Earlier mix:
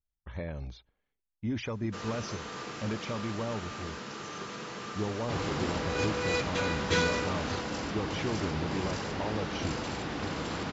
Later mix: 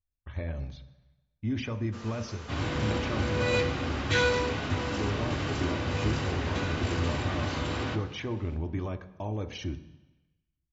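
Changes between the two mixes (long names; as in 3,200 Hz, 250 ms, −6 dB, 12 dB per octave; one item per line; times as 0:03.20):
first sound −6.0 dB
second sound: entry −2.80 s
reverb: on, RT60 1.1 s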